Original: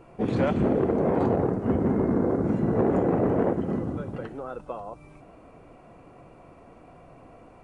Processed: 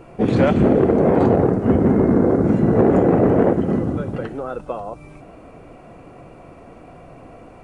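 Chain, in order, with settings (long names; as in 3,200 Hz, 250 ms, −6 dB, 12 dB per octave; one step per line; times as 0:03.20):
parametric band 990 Hz −3 dB 0.53 octaves
level +8.5 dB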